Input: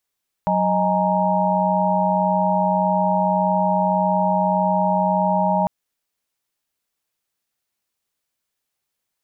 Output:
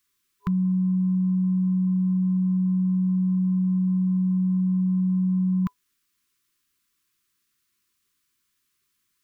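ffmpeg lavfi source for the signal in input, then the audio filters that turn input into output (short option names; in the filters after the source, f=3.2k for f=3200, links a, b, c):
-f lavfi -i "aevalsrc='0.0841*(sin(2*PI*185*t)+sin(2*PI*622.25*t)+sin(2*PI*830.61*t)+sin(2*PI*932.33*t))':d=5.2:s=44100"
-filter_complex "[0:a]asplit=2[a][b];[b]alimiter=limit=-21dB:level=0:latency=1:release=35,volume=-0.5dB[c];[a][c]amix=inputs=2:normalize=0,afftfilt=real='re*(1-between(b*sr/4096,410,1000))':imag='im*(1-between(b*sr/4096,410,1000))':win_size=4096:overlap=0.75"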